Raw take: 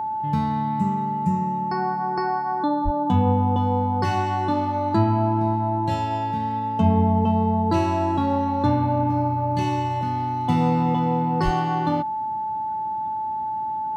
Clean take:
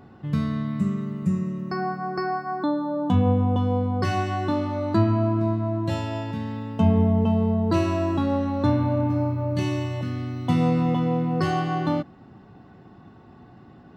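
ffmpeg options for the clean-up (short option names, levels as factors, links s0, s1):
-filter_complex "[0:a]bandreject=f=870:w=30,asplit=3[s0][s1][s2];[s0]afade=t=out:st=2.84:d=0.02[s3];[s1]highpass=f=140:w=0.5412,highpass=f=140:w=1.3066,afade=t=in:st=2.84:d=0.02,afade=t=out:st=2.96:d=0.02[s4];[s2]afade=t=in:st=2.96:d=0.02[s5];[s3][s4][s5]amix=inputs=3:normalize=0,asplit=3[s6][s7][s8];[s6]afade=t=out:st=11.44:d=0.02[s9];[s7]highpass=f=140:w=0.5412,highpass=f=140:w=1.3066,afade=t=in:st=11.44:d=0.02,afade=t=out:st=11.56:d=0.02[s10];[s8]afade=t=in:st=11.56:d=0.02[s11];[s9][s10][s11]amix=inputs=3:normalize=0"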